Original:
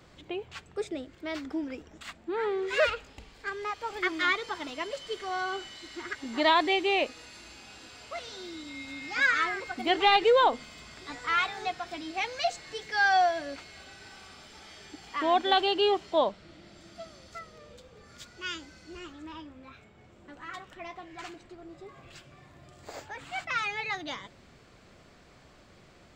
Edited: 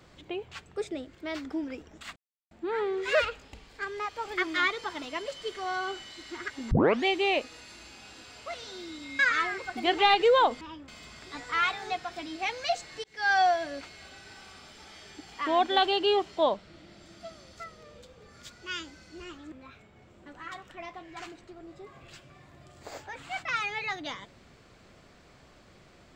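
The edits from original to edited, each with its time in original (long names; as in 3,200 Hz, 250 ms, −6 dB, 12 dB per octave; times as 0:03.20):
0:02.16: splice in silence 0.35 s
0:06.36: tape start 0.34 s
0:08.84–0:09.21: remove
0:12.79–0:13.08: fade in
0:19.27–0:19.54: move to 0:10.63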